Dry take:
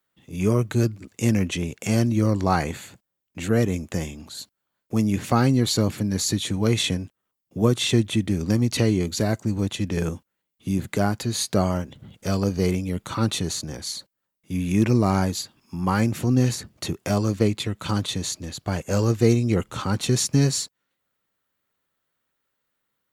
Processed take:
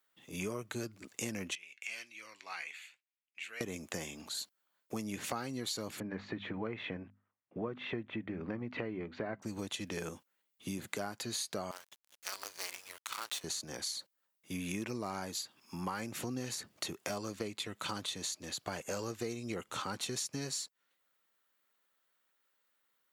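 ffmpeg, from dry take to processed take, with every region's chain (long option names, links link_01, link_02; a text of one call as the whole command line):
ffmpeg -i in.wav -filter_complex "[0:a]asettb=1/sr,asplit=3[link_01][link_02][link_03];[link_01]atrim=end=1.554[link_04];[link_02]atrim=start=1.55:end=3.61,asetpts=PTS-STARTPTS,afade=type=in:duration=0.004:curve=qsin,afade=type=out:start_time=2.056:duration=0.004:curve=qsin,bandpass=frequency=2400:width_type=q:width=3.6,aemphasis=mode=production:type=50kf,flanger=delay=5.9:depth=2.4:regen=68:speed=1.9:shape=sinusoidal[link_05];[link_03]atrim=start=3.606[link_06];[link_04][link_05]acrossfade=duration=0.004:curve1=hsin:curve2=qsin[link_07];[link_07][link_06]acrossfade=duration=0.004:curve1=qsin:curve2=hsin,asettb=1/sr,asplit=3[link_08][link_09][link_10];[link_08]atrim=end=6.004[link_11];[link_09]atrim=start=6:end=9.42,asetpts=PTS-STARTPTS,afade=type=in:duration=0.004:curve=qsin,afade=type=out:start_time=3.416:duration=0.004:curve=qsin,lowpass=frequency=2200:width=0.5412,lowpass=frequency=2200:width=1.3066,bandreject=frequency=50:width_type=h:width=6,bandreject=frequency=100:width_type=h:width=6,bandreject=frequency=150:width_type=h:width=6,bandreject=frequency=200:width_type=h:width=6,bandreject=frequency=250:width_type=h:width=6[link_12];[link_10]atrim=start=9.416[link_13];[link_11][link_12]acrossfade=duration=0.004:curve1=hsin:curve2=qsin[link_14];[link_14][link_13]acrossfade=duration=0.004:curve1=qsin:curve2=hsin,asettb=1/sr,asplit=3[link_15][link_16][link_17];[link_15]atrim=end=11.714[link_18];[link_16]atrim=start=11.71:end=13.44,asetpts=PTS-STARTPTS,afade=type=in:duration=0.004:curve=qsin,afade=type=out:start_time=1.726:duration=0.004:curve=qsin,aeval=exprs='if(lt(val(0),0),0.447*val(0),val(0))':channel_layout=same,highpass=1100,acrusher=bits=6:dc=4:mix=0:aa=0.000001[link_19];[link_17]atrim=start=13.436[link_20];[link_18][link_19]acrossfade=duration=0.004:curve1=hsin:curve2=qsin[link_21];[link_21][link_20]acrossfade=duration=0.004:curve1=qsin:curve2=hsin,highpass=frequency=640:poles=1,acompressor=threshold=-36dB:ratio=6" out.wav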